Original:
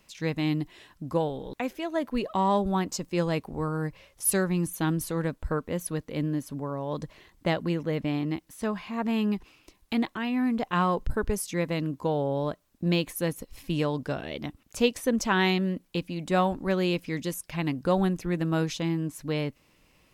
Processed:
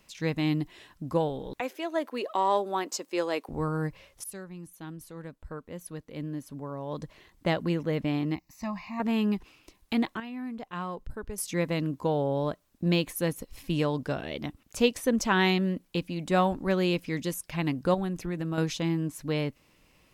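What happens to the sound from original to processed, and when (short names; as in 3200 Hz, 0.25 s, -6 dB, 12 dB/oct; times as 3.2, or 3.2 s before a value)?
1.6–3.49 HPF 310 Hz 24 dB/oct
4.24–7.62 fade in quadratic, from -16.5 dB
8.35–9 fixed phaser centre 2200 Hz, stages 8
10.2–11.38 gain -10.5 dB
17.94–18.58 compressor 2.5:1, threshold -29 dBFS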